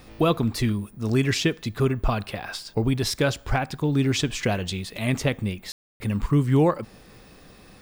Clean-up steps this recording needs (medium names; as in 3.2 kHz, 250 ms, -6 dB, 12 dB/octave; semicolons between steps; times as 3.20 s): room tone fill 5.72–6.00 s